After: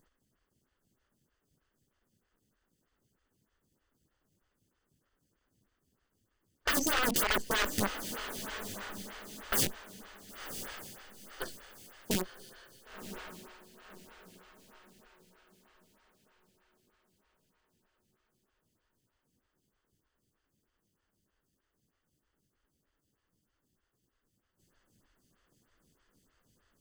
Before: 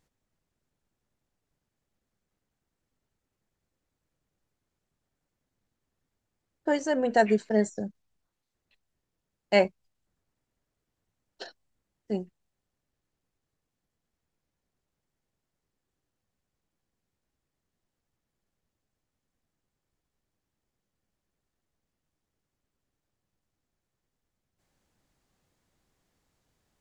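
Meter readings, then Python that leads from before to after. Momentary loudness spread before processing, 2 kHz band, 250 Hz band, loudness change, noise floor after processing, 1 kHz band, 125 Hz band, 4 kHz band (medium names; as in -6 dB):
22 LU, +1.0 dB, -7.5 dB, -6.5 dB, -82 dBFS, -4.0 dB, -2.5 dB, +6.0 dB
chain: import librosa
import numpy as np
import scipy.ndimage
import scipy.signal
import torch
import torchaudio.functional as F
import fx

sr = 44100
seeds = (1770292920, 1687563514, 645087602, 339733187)

p1 = fx.lower_of_two(x, sr, delay_ms=0.64)
p2 = fx.rider(p1, sr, range_db=10, speed_s=0.5)
p3 = (np.mod(10.0 ** (29.0 / 20.0) * p2 + 1.0, 2.0) - 1.0) / 10.0 ** (29.0 / 20.0)
p4 = p3 + fx.echo_diffused(p3, sr, ms=1030, feedback_pct=42, wet_db=-10, dry=0)
p5 = fx.stagger_phaser(p4, sr, hz=3.2)
y = p5 * 10.0 ** (9.0 / 20.0)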